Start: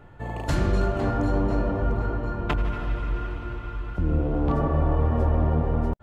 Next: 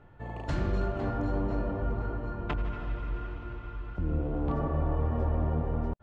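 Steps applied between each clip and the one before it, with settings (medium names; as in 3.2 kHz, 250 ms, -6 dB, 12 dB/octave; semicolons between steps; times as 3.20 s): distance through air 96 m; trim -6.5 dB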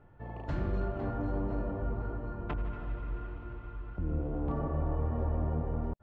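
low-pass 1.8 kHz 6 dB/octave; trim -3 dB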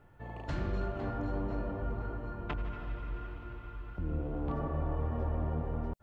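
treble shelf 2.1 kHz +10.5 dB; trim -2 dB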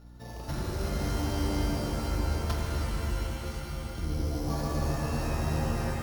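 sorted samples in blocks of 8 samples; hum 60 Hz, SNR 17 dB; pitch-shifted reverb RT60 3 s, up +7 st, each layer -2 dB, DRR -0.5 dB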